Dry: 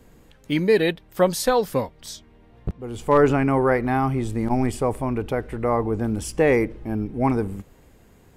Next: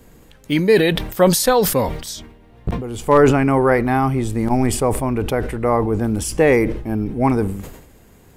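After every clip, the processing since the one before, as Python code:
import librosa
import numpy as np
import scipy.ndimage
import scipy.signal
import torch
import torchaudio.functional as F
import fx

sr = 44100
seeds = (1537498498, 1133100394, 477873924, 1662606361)

y = fx.high_shelf(x, sr, hz=7500.0, db=6.0)
y = fx.sustainer(y, sr, db_per_s=70.0)
y = y * 10.0 ** (4.0 / 20.0)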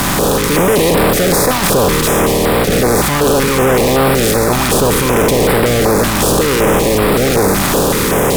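y = fx.bin_compress(x, sr, power=0.2)
y = fx.fuzz(y, sr, gain_db=19.0, gate_db=-19.0)
y = fx.filter_held_notch(y, sr, hz=5.3, low_hz=470.0, high_hz=6300.0)
y = y * 10.0 ** (5.0 / 20.0)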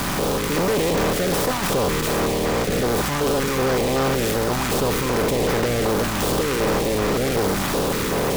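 y = fx.noise_mod_delay(x, sr, seeds[0], noise_hz=3400.0, depth_ms=0.038)
y = y * 10.0 ** (-9.0 / 20.0)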